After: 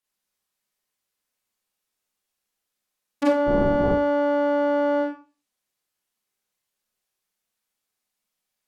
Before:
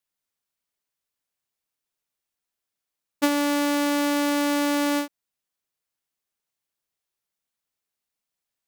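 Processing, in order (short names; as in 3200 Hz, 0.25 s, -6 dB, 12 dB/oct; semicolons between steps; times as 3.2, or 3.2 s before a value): 3.46–3.88 wind noise 320 Hz -20 dBFS; treble ducked by the level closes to 1100 Hz, closed at -23 dBFS; Schroeder reverb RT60 0.34 s, combs from 30 ms, DRR -5 dB; gain -1.5 dB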